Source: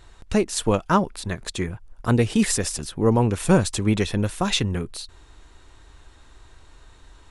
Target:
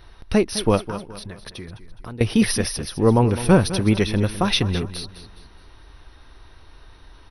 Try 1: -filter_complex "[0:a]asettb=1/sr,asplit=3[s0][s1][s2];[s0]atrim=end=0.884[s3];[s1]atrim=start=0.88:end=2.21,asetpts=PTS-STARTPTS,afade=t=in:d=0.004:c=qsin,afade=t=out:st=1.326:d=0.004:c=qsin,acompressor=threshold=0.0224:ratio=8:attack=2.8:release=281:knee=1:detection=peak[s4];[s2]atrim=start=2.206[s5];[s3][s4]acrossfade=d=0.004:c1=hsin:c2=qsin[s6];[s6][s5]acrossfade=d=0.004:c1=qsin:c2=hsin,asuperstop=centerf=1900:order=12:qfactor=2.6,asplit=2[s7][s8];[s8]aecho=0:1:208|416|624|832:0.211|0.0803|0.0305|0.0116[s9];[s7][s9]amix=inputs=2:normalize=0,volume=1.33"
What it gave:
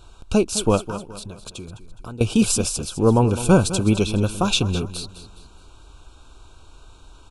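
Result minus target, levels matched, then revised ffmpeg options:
8 kHz band +4.5 dB
-filter_complex "[0:a]asettb=1/sr,asplit=3[s0][s1][s2];[s0]atrim=end=0.884[s3];[s1]atrim=start=0.88:end=2.21,asetpts=PTS-STARTPTS,afade=t=in:d=0.004:c=qsin,afade=t=out:st=1.326:d=0.004:c=qsin,acompressor=threshold=0.0224:ratio=8:attack=2.8:release=281:knee=1:detection=peak[s4];[s2]atrim=start=2.206[s5];[s3][s4]acrossfade=d=0.004:c1=hsin:c2=qsin[s6];[s6][s5]acrossfade=d=0.004:c1=qsin:c2=hsin,asuperstop=centerf=7400:order=12:qfactor=2.6,asplit=2[s7][s8];[s8]aecho=0:1:208|416|624|832:0.211|0.0803|0.0305|0.0116[s9];[s7][s9]amix=inputs=2:normalize=0,volume=1.33"

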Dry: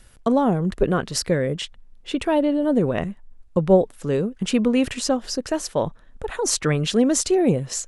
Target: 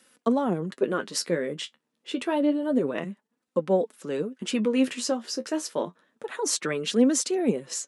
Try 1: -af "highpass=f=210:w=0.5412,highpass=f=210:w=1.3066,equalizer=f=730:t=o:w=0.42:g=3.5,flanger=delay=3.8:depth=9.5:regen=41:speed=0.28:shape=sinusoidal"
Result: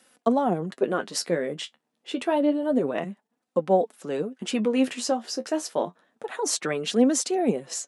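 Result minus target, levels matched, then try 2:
1 kHz band +4.0 dB
-af "highpass=f=210:w=0.5412,highpass=f=210:w=1.3066,equalizer=f=730:t=o:w=0.42:g=-5.5,flanger=delay=3.8:depth=9.5:regen=41:speed=0.28:shape=sinusoidal"

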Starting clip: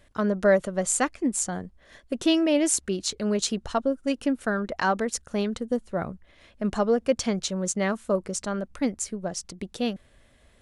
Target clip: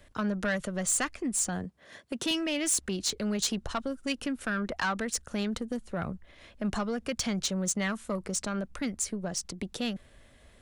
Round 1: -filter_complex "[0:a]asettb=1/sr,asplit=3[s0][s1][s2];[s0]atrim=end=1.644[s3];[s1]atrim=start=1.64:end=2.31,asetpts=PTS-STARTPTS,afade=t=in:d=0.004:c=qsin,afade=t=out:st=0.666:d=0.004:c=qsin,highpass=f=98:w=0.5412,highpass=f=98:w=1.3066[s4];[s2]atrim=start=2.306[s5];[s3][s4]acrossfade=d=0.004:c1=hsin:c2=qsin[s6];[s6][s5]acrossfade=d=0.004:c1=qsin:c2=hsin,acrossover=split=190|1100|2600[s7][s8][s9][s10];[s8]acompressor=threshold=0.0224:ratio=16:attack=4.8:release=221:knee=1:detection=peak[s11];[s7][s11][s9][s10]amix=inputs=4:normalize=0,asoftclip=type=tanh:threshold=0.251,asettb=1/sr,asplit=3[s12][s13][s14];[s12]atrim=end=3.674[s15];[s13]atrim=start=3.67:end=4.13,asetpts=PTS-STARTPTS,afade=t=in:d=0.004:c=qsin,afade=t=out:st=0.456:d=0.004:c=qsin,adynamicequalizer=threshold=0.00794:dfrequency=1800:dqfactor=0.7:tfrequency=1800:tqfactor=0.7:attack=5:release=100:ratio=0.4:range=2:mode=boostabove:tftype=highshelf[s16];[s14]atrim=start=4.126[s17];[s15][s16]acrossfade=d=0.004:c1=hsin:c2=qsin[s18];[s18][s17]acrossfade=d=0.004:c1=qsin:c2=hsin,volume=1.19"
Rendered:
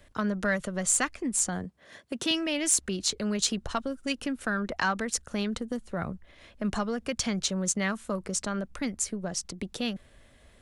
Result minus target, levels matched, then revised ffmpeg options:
saturation: distortion -14 dB
-filter_complex "[0:a]asettb=1/sr,asplit=3[s0][s1][s2];[s0]atrim=end=1.644[s3];[s1]atrim=start=1.64:end=2.31,asetpts=PTS-STARTPTS,afade=t=in:d=0.004:c=qsin,afade=t=out:st=0.666:d=0.004:c=qsin,highpass=f=98:w=0.5412,highpass=f=98:w=1.3066[s4];[s2]atrim=start=2.306[s5];[s3][s4]acrossfade=d=0.004:c1=hsin:c2=qsin[s6];[s6][s5]acrossfade=d=0.004:c1=qsin:c2=hsin,acrossover=split=190|1100|2600[s7][s8][s9][s10];[s8]acompressor=threshold=0.0224:ratio=16:attack=4.8:release=221:knee=1:detection=peak[s11];[s7][s11][s9][s10]amix=inputs=4:normalize=0,asoftclip=type=tanh:threshold=0.0708,asettb=1/sr,asplit=3[s12][s13][s14];[s12]atrim=end=3.674[s15];[s13]atrim=start=3.67:end=4.13,asetpts=PTS-STARTPTS,afade=t=in:d=0.004:c=qsin,afade=t=out:st=0.456:d=0.004:c=qsin,adynamicequalizer=threshold=0.00794:dfrequency=1800:dqfactor=0.7:tfrequency=1800:tqfactor=0.7:attack=5:release=100:ratio=0.4:range=2:mode=boostabove:tftype=highshelf[s16];[s14]atrim=start=4.126[s17];[s15][s16]acrossfade=d=0.004:c1=hsin:c2=qsin[s18];[s18][s17]acrossfade=d=0.004:c1=qsin:c2=hsin,volume=1.19"

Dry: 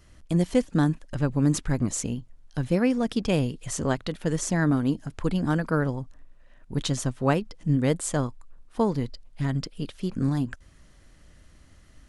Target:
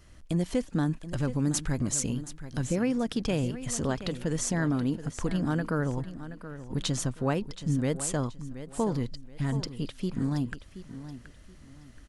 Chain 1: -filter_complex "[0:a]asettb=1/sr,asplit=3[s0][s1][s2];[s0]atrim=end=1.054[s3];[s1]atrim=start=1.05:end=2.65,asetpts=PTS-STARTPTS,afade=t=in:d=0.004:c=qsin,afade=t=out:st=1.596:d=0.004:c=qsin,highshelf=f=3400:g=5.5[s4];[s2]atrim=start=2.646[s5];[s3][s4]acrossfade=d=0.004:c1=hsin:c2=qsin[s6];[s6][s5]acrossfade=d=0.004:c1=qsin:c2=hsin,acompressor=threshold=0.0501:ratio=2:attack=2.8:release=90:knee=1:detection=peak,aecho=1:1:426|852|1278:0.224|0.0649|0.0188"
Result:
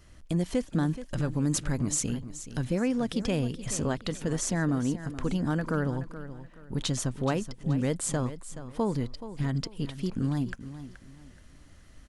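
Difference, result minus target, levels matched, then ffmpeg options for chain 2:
echo 300 ms early
-filter_complex "[0:a]asettb=1/sr,asplit=3[s0][s1][s2];[s0]atrim=end=1.054[s3];[s1]atrim=start=1.05:end=2.65,asetpts=PTS-STARTPTS,afade=t=in:d=0.004:c=qsin,afade=t=out:st=1.596:d=0.004:c=qsin,highshelf=f=3400:g=5.5[s4];[s2]atrim=start=2.646[s5];[s3][s4]acrossfade=d=0.004:c1=hsin:c2=qsin[s6];[s6][s5]acrossfade=d=0.004:c1=qsin:c2=hsin,acompressor=threshold=0.0501:ratio=2:attack=2.8:release=90:knee=1:detection=peak,aecho=1:1:726|1452|2178:0.224|0.0649|0.0188"

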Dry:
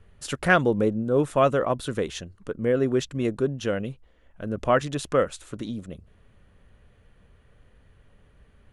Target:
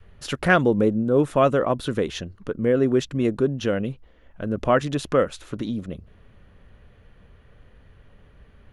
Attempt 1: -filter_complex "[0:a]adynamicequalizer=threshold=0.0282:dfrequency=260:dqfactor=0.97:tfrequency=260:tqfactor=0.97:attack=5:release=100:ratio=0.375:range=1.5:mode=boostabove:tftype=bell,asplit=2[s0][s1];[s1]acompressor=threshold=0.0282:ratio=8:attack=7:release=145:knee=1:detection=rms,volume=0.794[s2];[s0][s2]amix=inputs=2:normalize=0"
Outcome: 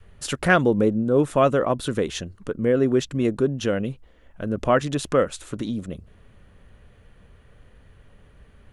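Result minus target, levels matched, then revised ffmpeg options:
8 kHz band +5.0 dB
-filter_complex "[0:a]adynamicequalizer=threshold=0.0282:dfrequency=260:dqfactor=0.97:tfrequency=260:tqfactor=0.97:attack=5:release=100:ratio=0.375:range=1.5:mode=boostabove:tftype=bell,asplit=2[s0][s1];[s1]acompressor=threshold=0.0282:ratio=8:attack=7:release=145:knee=1:detection=rms,lowpass=f=8600:w=0.5412,lowpass=f=8600:w=1.3066,volume=0.794[s2];[s0][s2]amix=inputs=2:normalize=0"

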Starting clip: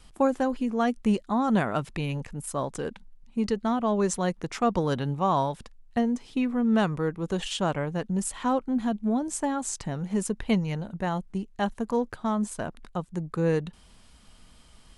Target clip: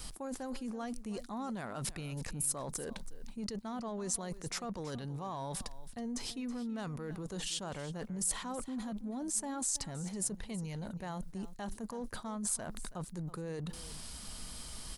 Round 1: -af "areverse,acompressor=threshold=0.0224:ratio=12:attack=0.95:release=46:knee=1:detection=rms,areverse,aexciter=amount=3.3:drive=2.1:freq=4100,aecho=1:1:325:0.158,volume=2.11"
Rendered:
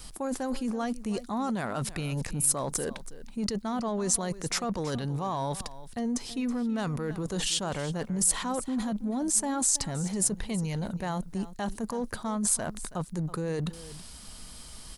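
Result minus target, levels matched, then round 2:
compression: peak gain reduction -9 dB
-af "areverse,acompressor=threshold=0.00708:ratio=12:attack=0.95:release=46:knee=1:detection=rms,areverse,aexciter=amount=3.3:drive=2.1:freq=4100,aecho=1:1:325:0.158,volume=2.11"

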